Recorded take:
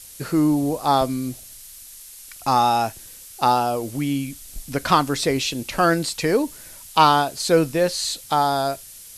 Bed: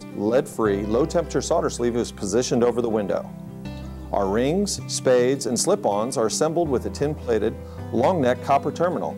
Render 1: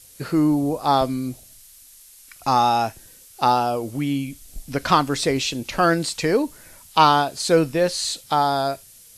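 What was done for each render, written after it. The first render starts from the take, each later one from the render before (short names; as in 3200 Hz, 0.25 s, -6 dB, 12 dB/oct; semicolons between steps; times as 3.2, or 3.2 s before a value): noise print and reduce 6 dB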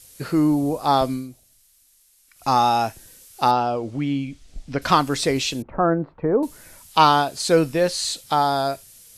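1.13–2.49 dip -10.5 dB, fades 0.15 s; 3.51–4.82 air absorption 120 m; 5.62–6.43 LPF 1200 Hz 24 dB/oct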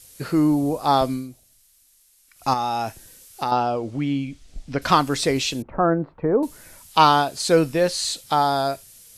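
2.53–3.52 compressor, threshold -20 dBFS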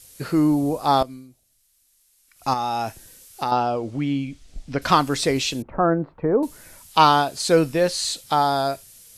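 1.03–2.81 fade in, from -14 dB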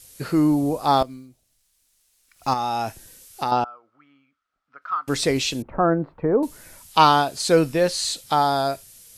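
0.86–2.58 median filter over 3 samples; 3.64–5.08 band-pass 1300 Hz, Q 13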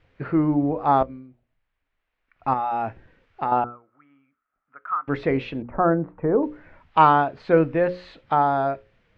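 LPF 2200 Hz 24 dB/oct; notches 60/120/180/240/300/360/420/480/540 Hz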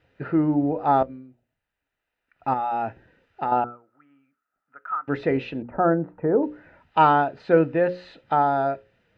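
notch comb 1100 Hz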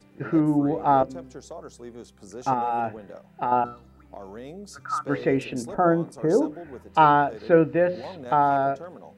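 add bed -18.5 dB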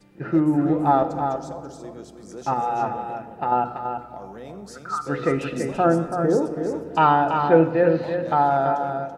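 echo 0.333 s -6.5 dB; shoebox room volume 3700 m³, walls mixed, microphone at 0.81 m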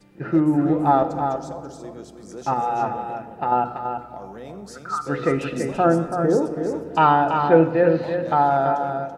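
gain +1 dB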